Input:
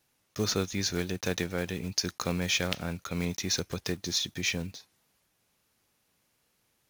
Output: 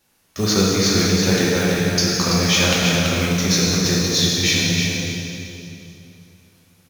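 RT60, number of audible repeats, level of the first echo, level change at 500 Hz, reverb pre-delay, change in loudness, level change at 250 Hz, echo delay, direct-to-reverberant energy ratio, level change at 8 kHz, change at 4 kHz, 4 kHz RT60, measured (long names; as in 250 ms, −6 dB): 2.7 s, 1, −5.0 dB, +13.5 dB, 3 ms, +13.5 dB, +15.0 dB, 333 ms, −7.0 dB, +14.0 dB, +14.0 dB, 2.5 s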